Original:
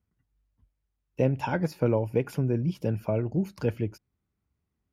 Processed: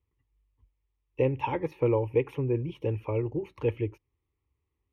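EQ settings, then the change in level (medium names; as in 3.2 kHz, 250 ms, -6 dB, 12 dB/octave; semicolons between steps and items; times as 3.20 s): Savitzky-Golay filter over 15 samples; static phaser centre 1 kHz, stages 8; +2.5 dB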